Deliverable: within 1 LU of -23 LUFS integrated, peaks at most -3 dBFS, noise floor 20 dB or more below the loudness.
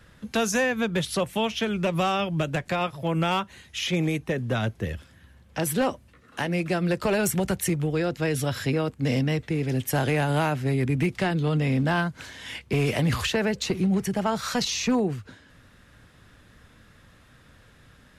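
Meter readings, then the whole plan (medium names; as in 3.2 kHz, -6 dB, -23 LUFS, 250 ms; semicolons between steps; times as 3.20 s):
clipped samples 0.6%; clipping level -16.5 dBFS; loudness -26.0 LUFS; peak level -16.5 dBFS; loudness target -23.0 LUFS
-> clip repair -16.5 dBFS; trim +3 dB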